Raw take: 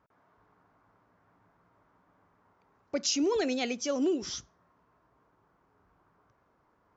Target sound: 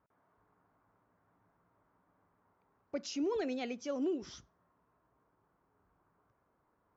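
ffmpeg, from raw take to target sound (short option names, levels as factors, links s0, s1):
-af "aemphasis=mode=reproduction:type=75kf,volume=0.501"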